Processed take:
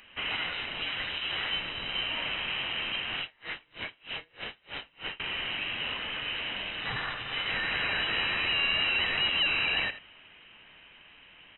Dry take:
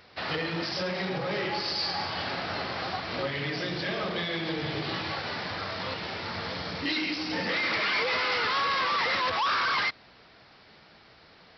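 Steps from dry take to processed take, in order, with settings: one-sided wavefolder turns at -32 dBFS; resonant low shelf 640 Hz -12.5 dB, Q 3; delay 83 ms -13.5 dB; frequency inversion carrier 3.9 kHz; 3.20–5.20 s: logarithmic tremolo 3.2 Hz, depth 34 dB

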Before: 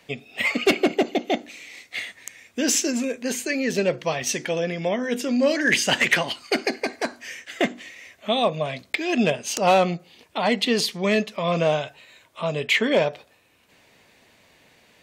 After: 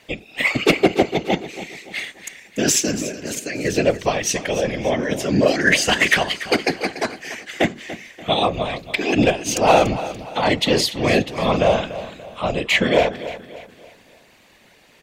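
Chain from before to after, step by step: 2.94–3.65 s: level held to a coarse grid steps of 10 dB; whisper effect; on a send: feedback delay 289 ms, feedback 40%, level -14 dB; on the sum: trim +3.5 dB

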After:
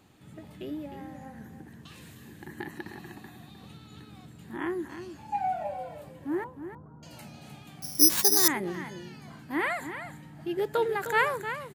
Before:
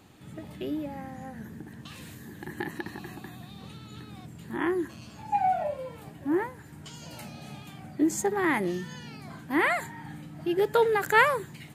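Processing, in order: 6.44–7.03 s: steep low-pass 1.3 kHz 48 dB/octave; delay 307 ms -10 dB; 7.82–8.48 s: careless resampling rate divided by 8×, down none, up zero stuff; trim -4.5 dB

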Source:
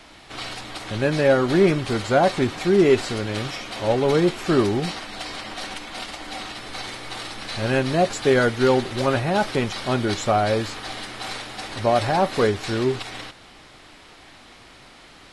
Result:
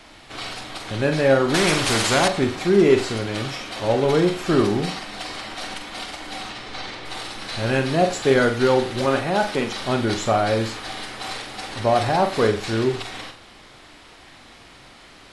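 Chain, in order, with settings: 6.49–7.04 s: low-pass 7.5 kHz -> 4.6 kHz 12 dB/octave; 9.05–9.78 s: peaking EQ 92 Hz -14.5 dB 0.9 oct; flutter echo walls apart 7.6 m, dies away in 0.33 s; 1.54–2.28 s: spectrum-flattening compressor 2:1

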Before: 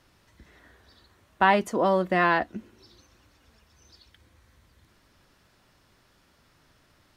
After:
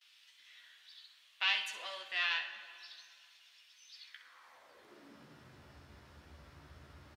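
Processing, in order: self-modulated delay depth 0.067 ms; gate with hold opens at -53 dBFS; treble shelf 4.3 kHz -9.5 dB; in parallel at +2.5 dB: compression, threshold -37 dBFS, peak gain reduction 20 dB; on the sum: high-pass sweep 3.1 kHz -> 69 Hz, 3.90–5.71 s; on a send: early reflections 14 ms -4.5 dB, 64 ms -10 dB; on the sum: plate-style reverb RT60 2.3 s, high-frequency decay 0.75×, DRR 9 dB; trim -5 dB

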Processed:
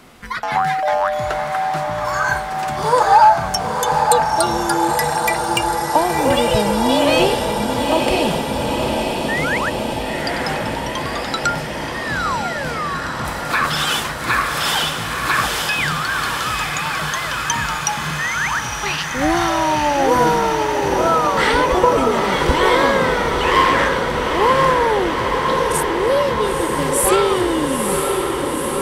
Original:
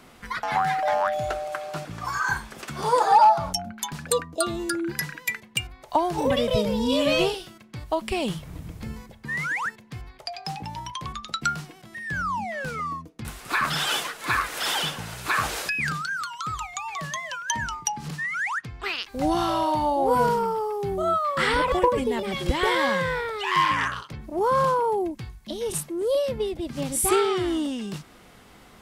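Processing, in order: echo that smears into a reverb 927 ms, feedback 77%, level -4.5 dB; trim +5.5 dB

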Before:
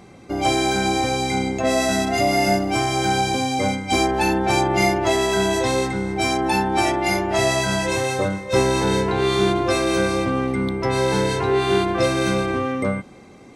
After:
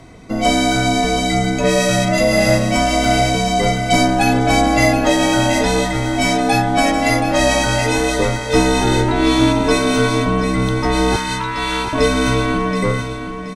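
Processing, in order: frequency shift -73 Hz; 11.16–11.93 s: brick-wall FIR high-pass 870 Hz; feedback delay 726 ms, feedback 32%, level -9 dB; trim +4.5 dB

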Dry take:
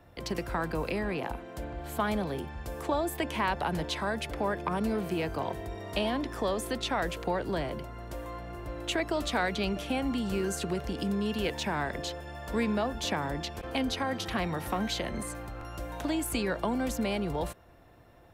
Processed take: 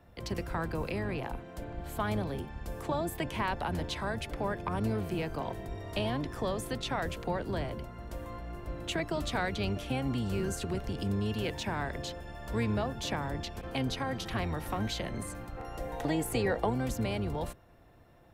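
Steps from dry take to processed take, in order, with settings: octave divider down 1 oct, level 0 dB; 15.57–16.70 s: small resonant body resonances 470/760/1900 Hz, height 12 dB, ringing for 35 ms; trim -3.5 dB

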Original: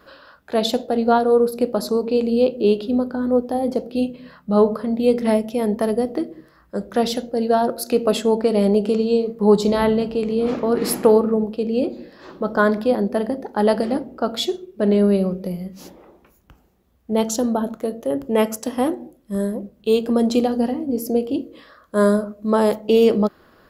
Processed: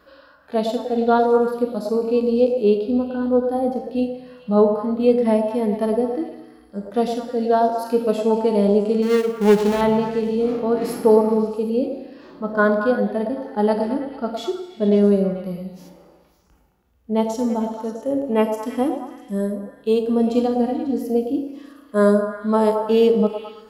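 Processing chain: 9.02–9.81 s: dead-time distortion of 0.28 ms; repeats whose band climbs or falls 109 ms, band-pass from 640 Hz, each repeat 0.7 oct, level -4.5 dB; FDN reverb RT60 1.4 s, low-frequency decay 1×, high-frequency decay 0.95×, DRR 14 dB; harmonic-percussive split percussive -16 dB

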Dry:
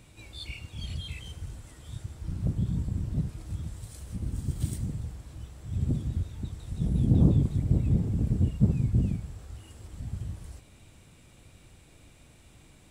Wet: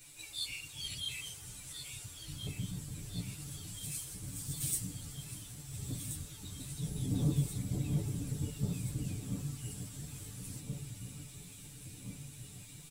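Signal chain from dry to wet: pre-emphasis filter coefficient 0.9; comb 6.9 ms, depth 95%; echo whose repeats swap between lows and highs 689 ms, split 1.8 kHz, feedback 79%, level -7 dB; three-phase chorus; trim +10 dB

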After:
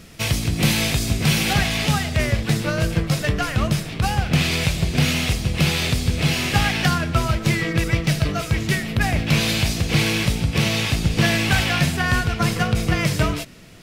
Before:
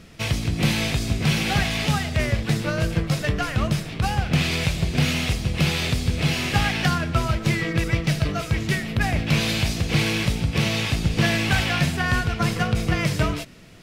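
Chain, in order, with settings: treble shelf 7.3 kHz +10.5 dB, from 1.53 s +5 dB; trim +2 dB

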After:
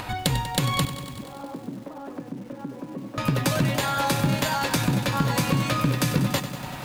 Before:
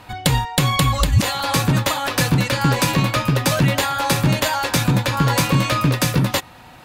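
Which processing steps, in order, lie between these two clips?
compression 6:1, threshold -22 dBFS, peak gain reduction 12 dB; 0.85–3.18 s: ladder band-pass 310 Hz, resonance 40%; dynamic bell 250 Hz, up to +4 dB, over -37 dBFS, Q 0.97; upward compressor, threshold -28 dBFS; bit-crushed delay 96 ms, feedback 80%, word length 7-bit, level -12 dB

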